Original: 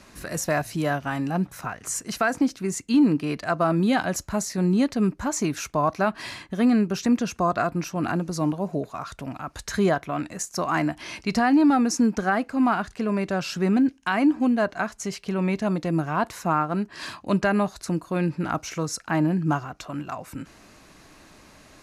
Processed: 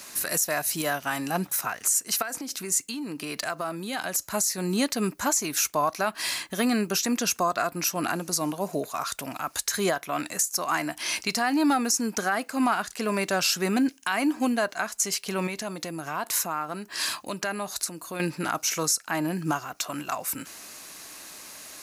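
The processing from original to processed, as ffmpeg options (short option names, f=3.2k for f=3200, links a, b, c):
-filter_complex "[0:a]asettb=1/sr,asplit=3[a][b][c];[a]atrim=end=2.224[d];[b]atrim=start=2.22:end=4.23,asetpts=PTS-STARTPTS,afade=t=in:d=0.004:c=qsin,afade=t=out:st=2.006:d=0.004:c=qsin,acompressor=threshold=-30dB:ratio=4:attack=3.2:release=140:knee=1:detection=peak[e];[c]atrim=start=4.226[f];[d][e]acrossfade=d=0.004:c1=hsin:c2=qsin[g];[g][f]acrossfade=d=0.004:c1=qsin:c2=hsin,asettb=1/sr,asplit=3[h][i][j];[h]atrim=end=15.474[k];[i]atrim=start=15.47:end=18.2,asetpts=PTS-STARTPTS,afade=t=in:d=0.004:c=qsin,afade=t=out:st=2.726:d=0.004:c=qsin,acompressor=threshold=-32dB:ratio=2.5:attack=3.2:release=140:knee=1:detection=peak[l];[j]atrim=start=18.196[m];[k][l]acrossfade=d=0.004:c1=hsin:c2=qsin[n];[n][m]acrossfade=d=0.004:c1=qsin:c2=hsin,aemphasis=mode=production:type=riaa,alimiter=limit=-16.5dB:level=0:latency=1:release=333,volume=3dB"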